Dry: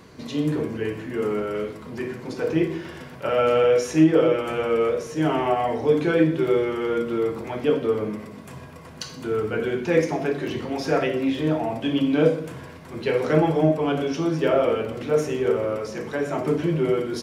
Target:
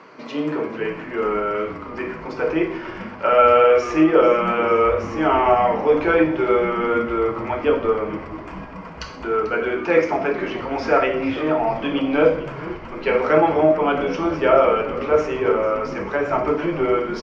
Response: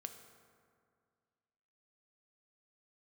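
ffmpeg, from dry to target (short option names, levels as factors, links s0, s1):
-filter_complex "[0:a]highpass=280,equalizer=f=610:t=q:w=4:g=4,equalizer=f=920:t=q:w=4:g=6,equalizer=f=1300:t=q:w=4:g=9,equalizer=f=2300:t=q:w=4:g=5,equalizer=f=3800:t=q:w=4:g=-9,lowpass=f=5000:w=0.5412,lowpass=f=5000:w=1.3066,asplit=8[s0][s1][s2][s3][s4][s5][s6][s7];[s1]adelay=442,afreqshift=-130,volume=0.168[s8];[s2]adelay=884,afreqshift=-260,volume=0.107[s9];[s3]adelay=1326,afreqshift=-390,volume=0.0684[s10];[s4]adelay=1768,afreqshift=-520,volume=0.0442[s11];[s5]adelay=2210,afreqshift=-650,volume=0.0282[s12];[s6]adelay=2652,afreqshift=-780,volume=0.018[s13];[s7]adelay=3094,afreqshift=-910,volume=0.0115[s14];[s0][s8][s9][s10][s11][s12][s13][s14]amix=inputs=8:normalize=0,volume=1.33"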